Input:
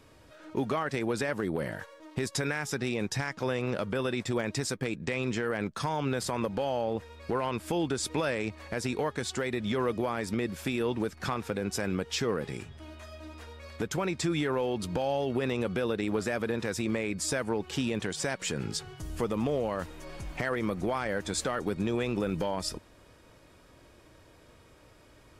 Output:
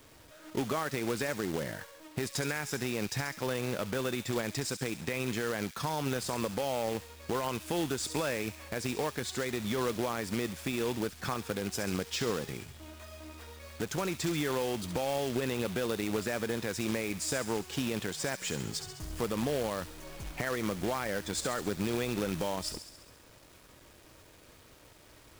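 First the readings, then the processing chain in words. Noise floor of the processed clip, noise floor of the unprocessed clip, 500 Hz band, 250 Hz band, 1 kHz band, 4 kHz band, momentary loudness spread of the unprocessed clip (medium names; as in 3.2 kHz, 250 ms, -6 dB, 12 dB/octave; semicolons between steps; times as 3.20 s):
-57 dBFS, -57 dBFS, -2.5 dB, -3.0 dB, -2.5 dB, 0.0 dB, 7 LU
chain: companded quantiser 4-bit; on a send: feedback echo behind a high-pass 68 ms, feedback 64%, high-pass 3.3 kHz, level -7.5 dB; on the sum: trim -3 dB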